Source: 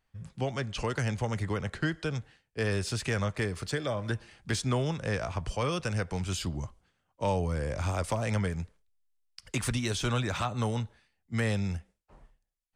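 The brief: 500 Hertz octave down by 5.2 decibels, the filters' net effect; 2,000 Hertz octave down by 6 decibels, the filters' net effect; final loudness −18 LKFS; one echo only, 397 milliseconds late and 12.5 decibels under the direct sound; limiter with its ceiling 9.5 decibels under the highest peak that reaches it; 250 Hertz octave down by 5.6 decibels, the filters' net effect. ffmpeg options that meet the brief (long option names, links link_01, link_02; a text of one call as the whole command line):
ffmpeg -i in.wav -af "equalizer=frequency=250:width_type=o:gain=-7,equalizer=frequency=500:width_type=o:gain=-4,equalizer=frequency=2000:width_type=o:gain=-7.5,alimiter=level_in=7dB:limit=-24dB:level=0:latency=1,volume=-7dB,aecho=1:1:397:0.237,volume=22dB" out.wav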